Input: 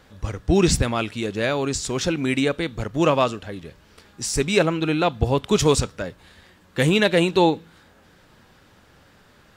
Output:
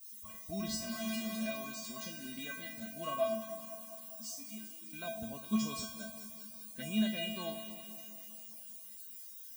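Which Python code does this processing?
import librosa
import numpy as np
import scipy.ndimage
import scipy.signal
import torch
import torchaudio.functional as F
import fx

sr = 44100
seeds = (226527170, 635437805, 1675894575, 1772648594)

p1 = fx.clip_1bit(x, sr, at=(0.76, 1.46))
p2 = fx.spec_repair(p1, sr, seeds[0], start_s=2.06, length_s=0.26, low_hz=620.0, high_hz=2900.0, source='before')
p3 = fx.vowel_filter(p2, sr, vowel='i', at=(4.33, 4.93))
p4 = fx.noise_reduce_blind(p3, sr, reduce_db=12)
p5 = fx.dmg_noise_colour(p4, sr, seeds[1], colour='violet', level_db=-34.0)
p6 = fx.comb_fb(p5, sr, f0_hz=220.0, decay_s=0.44, harmonics='odd', damping=0.0, mix_pct=100)
p7 = p6 + fx.echo_alternate(p6, sr, ms=101, hz=1100.0, feedback_pct=80, wet_db=-10.0, dry=0)
y = p7 * 10.0 ** (1.0 / 20.0)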